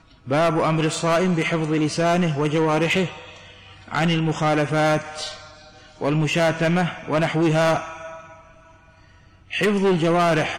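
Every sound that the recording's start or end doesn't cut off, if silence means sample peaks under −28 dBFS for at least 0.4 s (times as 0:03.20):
0:03.91–0:05.34
0:06.01–0:08.13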